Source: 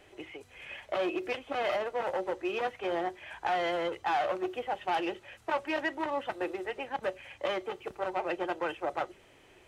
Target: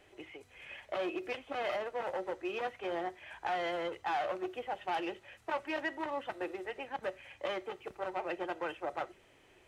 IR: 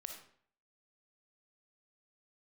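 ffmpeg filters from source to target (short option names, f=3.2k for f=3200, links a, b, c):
-filter_complex "[0:a]asplit=2[a][b];[b]equalizer=f=1.9k:w=1.5:g=7[c];[1:a]atrim=start_sample=2205,atrim=end_sample=4410[d];[c][d]afir=irnorm=-1:irlink=0,volume=-15dB[e];[a][e]amix=inputs=2:normalize=0,volume=-5.5dB"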